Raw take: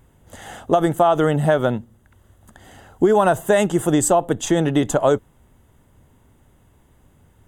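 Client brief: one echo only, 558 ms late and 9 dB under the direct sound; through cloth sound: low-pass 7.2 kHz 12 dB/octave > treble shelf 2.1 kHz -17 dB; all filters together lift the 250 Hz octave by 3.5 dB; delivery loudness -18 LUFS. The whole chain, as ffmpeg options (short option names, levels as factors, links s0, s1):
-af "lowpass=7200,equalizer=f=250:t=o:g=5.5,highshelf=f=2100:g=-17,aecho=1:1:558:0.355"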